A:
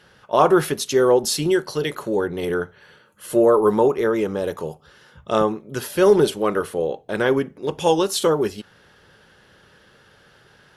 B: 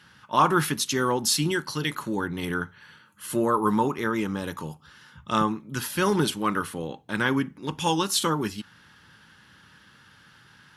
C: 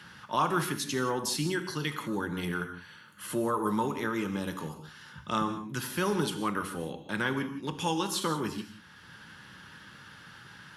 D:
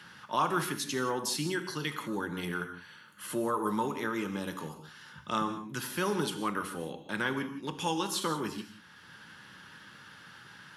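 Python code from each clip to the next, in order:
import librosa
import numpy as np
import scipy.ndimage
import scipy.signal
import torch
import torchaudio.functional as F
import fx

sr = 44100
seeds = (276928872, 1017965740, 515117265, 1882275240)

y1 = scipy.signal.sosfilt(scipy.signal.butter(2, 70.0, 'highpass', fs=sr, output='sos'), x)
y1 = fx.band_shelf(y1, sr, hz=520.0, db=-13.0, octaves=1.2)
y2 = fx.rev_gated(y1, sr, seeds[0], gate_ms=200, shape='flat', drr_db=8.5)
y2 = fx.band_squash(y2, sr, depth_pct=40)
y2 = F.gain(torch.from_numpy(y2), -6.0).numpy()
y3 = fx.low_shelf(y2, sr, hz=98.0, db=-10.5)
y3 = F.gain(torch.from_numpy(y3), -1.0).numpy()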